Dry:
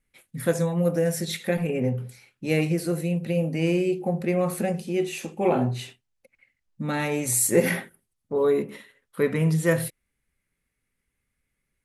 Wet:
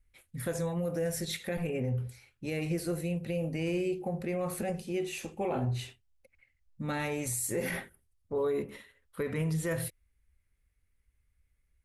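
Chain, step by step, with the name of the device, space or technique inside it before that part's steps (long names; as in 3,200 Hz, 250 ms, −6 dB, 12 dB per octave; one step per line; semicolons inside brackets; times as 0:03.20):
car stereo with a boomy subwoofer (low shelf with overshoot 110 Hz +13.5 dB, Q 1.5; brickwall limiter −19 dBFS, peak gain reduction 9 dB)
level −5 dB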